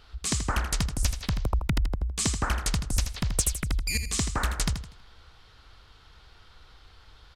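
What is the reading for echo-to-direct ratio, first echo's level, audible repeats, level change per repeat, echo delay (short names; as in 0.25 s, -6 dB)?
-8.5 dB, -9.0 dB, 3, -9.5 dB, 81 ms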